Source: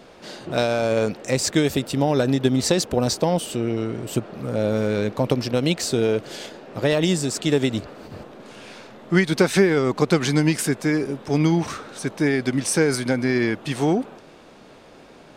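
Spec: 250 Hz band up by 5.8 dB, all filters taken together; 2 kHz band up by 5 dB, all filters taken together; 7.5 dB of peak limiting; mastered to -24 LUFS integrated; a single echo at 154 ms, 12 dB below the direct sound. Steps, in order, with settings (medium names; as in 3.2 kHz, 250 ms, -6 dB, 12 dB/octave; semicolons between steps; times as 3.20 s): peaking EQ 250 Hz +7.5 dB; peaking EQ 2 kHz +6 dB; peak limiter -7.5 dBFS; delay 154 ms -12 dB; trim -5 dB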